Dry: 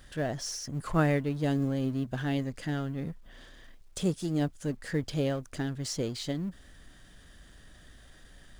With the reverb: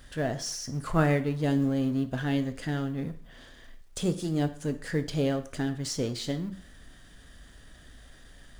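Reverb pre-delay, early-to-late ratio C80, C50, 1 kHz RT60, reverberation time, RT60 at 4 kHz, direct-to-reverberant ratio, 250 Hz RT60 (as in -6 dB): 4 ms, 17.5 dB, 14.0 dB, 0.55 s, 0.55 s, 0.50 s, 9.0 dB, 0.50 s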